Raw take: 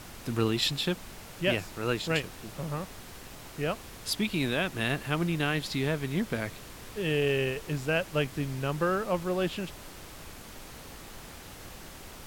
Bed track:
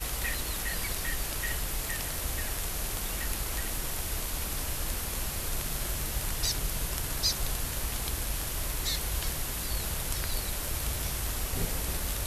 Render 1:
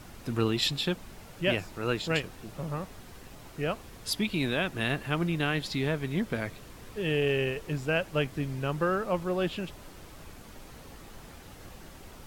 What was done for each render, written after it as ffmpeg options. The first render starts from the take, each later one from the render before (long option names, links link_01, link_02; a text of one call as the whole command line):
ffmpeg -i in.wav -af "afftdn=noise_reduction=6:noise_floor=-47" out.wav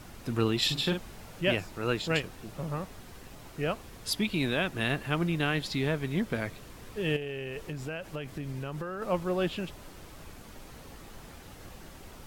ffmpeg -i in.wav -filter_complex "[0:a]asettb=1/sr,asplit=3[link_01][link_02][link_03];[link_01]atrim=end=0.644[link_04];[link_02]atrim=start=0.64:end=1.41,asetpts=PTS-STARTPTS,afade=type=in:duration=0.004:curve=qsin,afade=type=out:start_time=0.766:duration=0.004:curve=qsin,asplit=2[link_05][link_06];[link_06]adelay=46,volume=-6dB[link_07];[link_05][link_07]amix=inputs=2:normalize=0,atrim=end_sample=33957[link_08];[link_03]atrim=start=1.406[link_09];[link_04][link_08]acrossfade=duration=0.004:curve1=hsin:curve2=qsin[link_10];[link_10][link_09]acrossfade=duration=0.004:curve1=qsin:curve2=hsin,asettb=1/sr,asplit=3[link_11][link_12][link_13];[link_11]atrim=end=7.164[link_14];[link_12]atrim=start=7.16:end=9.02,asetpts=PTS-STARTPTS,afade=type=in:duration=0.004:curve=qsin,afade=type=out:start_time=1.856:duration=0.004:curve=qsin,acompressor=threshold=-32dB:ratio=12:attack=3.2:release=140:knee=1:detection=peak[link_15];[link_13]atrim=start=9.016[link_16];[link_14][link_15]acrossfade=duration=0.004:curve1=hsin:curve2=qsin[link_17];[link_17][link_16]acrossfade=duration=0.004:curve1=qsin:curve2=hsin" out.wav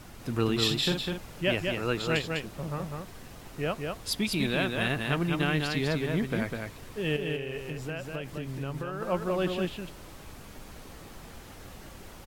ffmpeg -i in.wav -af "aecho=1:1:201:0.631" out.wav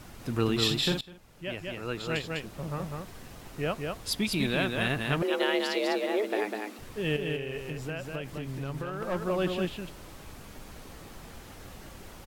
ffmpeg -i in.wav -filter_complex "[0:a]asettb=1/sr,asplit=3[link_01][link_02][link_03];[link_01]atrim=end=5.224[link_04];[link_02]atrim=start=5.22:end=6.79,asetpts=PTS-STARTPTS,afade=type=in:duration=0.004:curve=qsin,afade=type=out:start_time=1.566:duration=0.004:curve=qsin,afreqshift=200[link_05];[link_03]atrim=start=6.786[link_06];[link_04][link_05]acrossfade=duration=0.004:curve1=hsin:curve2=qsin[link_07];[link_07][link_06]acrossfade=duration=0.004:curve1=qsin:curve2=hsin,asettb=1/sr,asplit=3[link_08][link_09][link_10];[link_08]atrim=end=8.374[link_11];[link_09]atrim=start=8.37:end=9.16,asetpts=PTS-STARTPTS,afade=type=in:duration=0.004:curve=qsin,afade=type=out:start_time=0.786:duration=0.004:curve=qsin,aeval=exprs='clip(val(0),-1,0.0335)':channel_layout=same[link_12];[link_10]atrim=start=9.156[link_13];[link_11][link_12]acrossfade=duration=0.004:curve1=hsin:curve2=qsin[link_14];[link_14][link_13]acrossfade=duration=0.004:curve1=qsin:curve2=hsin,asplit=2[link_15][link_16];[link_15]atrim=end=1.01,asetpts=PTS-STARTPTS,afade=type=out:start_time=1.006:duration=0.004:curve=hsin:silence=0.105925[link_17];[link_16]atrim=start=1.01,asetpts=PTS-STARTPTS,afade=type=in:duration=1.82:silence=0.105925[link_18];[link_17][link_18]concat=n=2:v=0:a=1" out.wav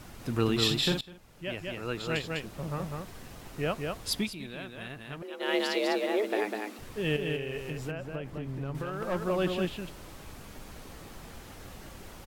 ffmpeg -i in.wav -filter_complex "[0:a]asettb=1/sr,asplit=3[link_01][link_02][link_03];[link_01]atrim=end=7.914[link_04];[link_02]atrim=start=7.91:end=8.75,asetpts=PTS-STARTPTS,afade=type=in:duration=0.004:curve=qsin,afade=type=out:start_time=0.836:duration=0.004:curve=qsin,highshelf=frequency=2400:gain=-11.5[link_05];[link_03]atrim=start=8.746[link_06];[link_04][link_05]acrossfade=duration=0.004:curve1=hsin:curve2=qsin[link_07];[link_07][link_06]acrossfade=duration=0.004:curve1=qsin:curve2=hsin,asplit=3[link_08][link_09][link_10];[link_08]atrim=end=4.34,asetpts=PTS-STARTPTS,afade=type=out:start_time=4.19:duration=0.15:silence=0.223872[link_11];[link_09]atrim=start=4.34:end=5.39,asetpts=PTS-STARTPTS,volume=-13dB[link_12];[link_10]atrim=start=5.39,asetpts=PTS-STARTPTS,afade=type=in:duration=0.15:silence=0.223872[link_13];[link_11][link_12][link_13]concat=n=3:v=0:a=1" out.wav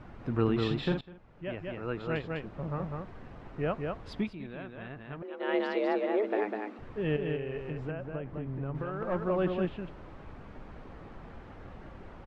ffmpeg -i in.wav -af "lowpass=1700" out.wav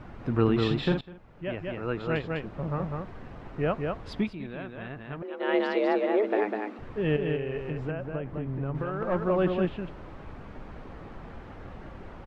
ffmpeg -i in.wav -af "volume=4dB" out.wav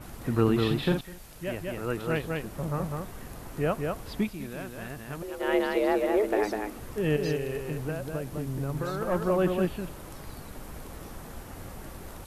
ffmpeg -i in.wav -i bed.wav -filter_complex "[1:a]volume=-16.5dB[link_01];[0:a][link_01]amix=inputs=2:normalize=0" out.wav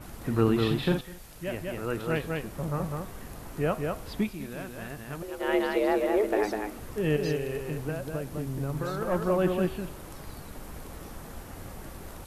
ffmpeg -i in.wav -af "bandreject=frequency=125.7:width_type=h:width=4,bandreject=frequency=251.4:width_type=h:width=4,bandreject=frequency=377.1:width_type=h:width=4,bandreject=frequency=502.8:width_type=h:width=4,bandreject=frequency=628.5:width_type=h:width=4,bandreject=frequency=754.2:width_type=h:width=4,bandreject=frequency=879.9:width_type=h:width=4,bandreject=frequency=1005.6:width_type=h:width=4,bandreject=frequency=1131.3:width_type=h:width=4,bandreject=frequency=1257:width_type=h:width=4,bandreject=frequency=1382.7:width_type=h:width=4,bandreject=frequency=1508.4:width_type=h:width=4,bandreject=frequency=1634.1:width_type=h:width=4,bandreject=frequency=1759.8:width_type=h:width=4,bandreject=frequency=1885.5:width_type=h:width=4,bandreject=frequency=2011.2:width_type=h:width=4,bandreject=frequency=2136.9:width_type=h:width=4,bandreject=frequency=2262.6:width_type=h:width=4,bandreject=frequency=2388.3:width_type=h:width=4,bandreject=frequency=2514:width_type=h:width=4,bandreject=frequency=2639.7:width_type=h:width=4,bandreject=frequency=2765.4:width_type=h:width=4,bandreject=frequency=2891.1:width_type=h:width=4,bandreject=frequency=3016.8:width_type=h:width=4,bandreject=frequency=3142.5:width_type=h:width=4,bandreject=frequency=3268.2:width_type=h:width=4,bandreject=frequency=3393.9:width_type=h:width=4,bandreject=frequency=3519.6:width_type=h:width=4,bandreject=frequency=3645.3:width_type=h:width=4,bandreject=frequency=3771:width_type=h:width=4,bandreject=frequency=3896.7:width_type=h:width=4" out.wav